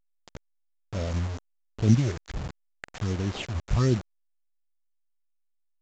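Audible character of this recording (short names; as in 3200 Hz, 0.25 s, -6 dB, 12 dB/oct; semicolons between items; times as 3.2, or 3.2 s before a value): aliases and images of a low sample rate 5900 Hz, jitter 0%; phasing stages 6, 1.3 Hz, lowest notch 250–3000 Hz; a quantiser's noise floor 6-bit, dither none; A-law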